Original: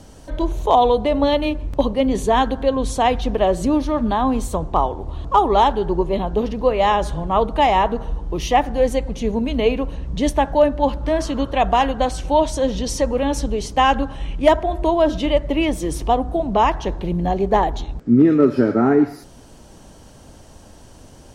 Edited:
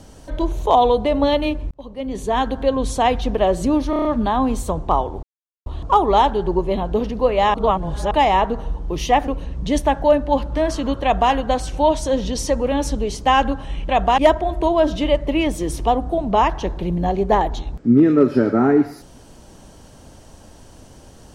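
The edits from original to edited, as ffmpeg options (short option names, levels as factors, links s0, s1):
-filter_complex "[0:a]asplit=13[s0][s1][s2][s3][s4][s5][s6][s7][s8][s9][s10][s11][s12];[s0]atrim=end=1.71,asetpts=PTS-STARTPTS,afade=t=out:st=1.706:d=0.004:c=hsin[s13];[s1]atrim=start=1.71:end=3.932,asetpts=PTS-STARTPTS,afade=t=in:d=0.94[s14];[s2]atrim=start=3.898:end=3.932[s15];[s3]atrim=start=3.898:end=3.932[s16];[s4]atrim=start=3.898:end=3.932[s17];[s5]atrim=start=3.898:end=3.932[s18];[s6]atrim=start=3.898:end=5.08,asetpts=PTS-STARTPTS,afade=t=out:st=1.178:d=0.004:c=hsin,apad=pad_dur=0.43[s19];[s7]atrim=start=5.08:end=6.962,asetpts=PTS-STARTPTS,afade=t=in:d=0.004:c=hsin[s20];[s8]atrim=start=6.958:end=7.532,asetpts=PTS-STARTPTS,areverse[s21];[s9]atrim=start=7.528:end=8.702[s22];[s10]atrim=start=9.788:end=14.402[s23];[s11]atrim=start=11.538:end=11.832[s24];[s12]atrim=start=14.398[s25];[s13][s14]concat=n=2:v=0:a=1[s26];[s26][s15]acrossfade=d=0.004:c1=hsin:c2=hsin[s27];[s27][s16]acrossfade=d=0.004:c1=hsin:c2=hsin[s28];[s28][s17]acrossfade=d=0.004:c1=hsin:c2=hsin[s29];[s29][s18]acrossfade=d=0.004:c1=hsin:c2=hsin[s30];[s19][s20]concat=n=2:v=0:a=1[s31];[s30][s31]acrossfade=d=0.004:c1=hsin:c2=hsin[s32];[s32][s21]acrossfade=d=0.004:c1=hsin:c2=hsin[s33];[s33][s22]acrossfade=d=0.004:c1=hsin:c2=hsin[s34];[s34][s23]acrossfade=d=0.004:c1=hsin:c2=hsin[s35];[s35][s24]acrossfade=d=0.004:c1=hsin:c2=hsin[s36];[s36][s25]acrossfade=d=0.004:c1=hsin:c2=hsin"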